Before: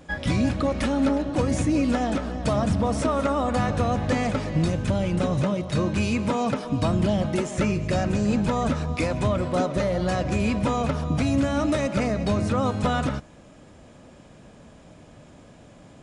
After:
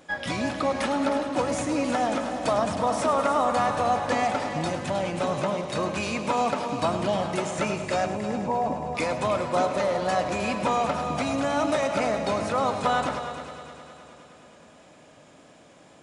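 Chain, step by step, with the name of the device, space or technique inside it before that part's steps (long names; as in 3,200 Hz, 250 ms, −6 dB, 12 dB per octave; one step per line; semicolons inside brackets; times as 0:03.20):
0:08.06–0:08.95: Chebyshev low-pass filter 1,100 Hz, order 10
high-pass filter 500 Hz 6 dB per octave
multi-head tape echo (echo machine with several playback heads 104 ms, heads first and third, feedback 67%, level −11.5 dB; tape wow and flutter 24 cents)
dynamic equaliser 860 Hz, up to +6 dB, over −40 dBFS, Q 1.5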